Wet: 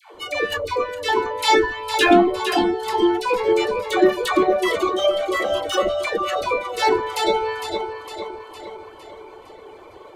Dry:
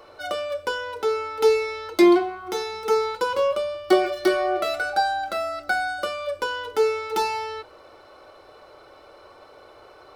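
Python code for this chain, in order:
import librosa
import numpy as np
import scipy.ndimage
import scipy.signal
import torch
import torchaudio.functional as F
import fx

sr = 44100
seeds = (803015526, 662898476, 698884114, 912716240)

p1 = fx.echo_feedback(x, sr, ms=458, feedback_pct=54, wet_db=-8.0)
p2 = np.clip(10.0 ** (23.0 / 20.0) * p1, -1.0, 1.0) / 10.0 ** (23.0 / 20.0)
p3 = p1 + (p2 * librosa.db_to_amplitude(-4.5))
p4 = fx.dereverb_blind(p3, sr, rt60_s=0.55)
p5 = fx.formant_shift(p4, sr, semitones=-4)
p6 = fx.dispersion(p5, sr, late='lows', ms=145.0, hz=670.0)
y = p6 * librosa.db_to_amplitude(2.0)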